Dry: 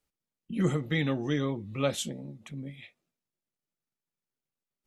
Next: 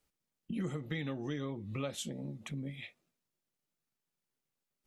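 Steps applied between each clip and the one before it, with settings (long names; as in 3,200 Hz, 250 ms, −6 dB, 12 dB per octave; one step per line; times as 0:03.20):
downward compressor 4 to 1, threshold −39 dBFS, peak gain reduction 14.5 dB
level +2.5 dB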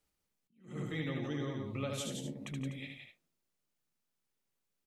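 multi-tap delay 75/147/171/247 ms −4/−17.5/−5/−11.5 dB
level that may rise only so fast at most 150 dB per second
level −1.5 dB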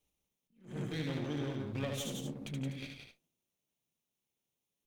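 lower of the sound and its delayed copy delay 0.31 ms
level +1 dB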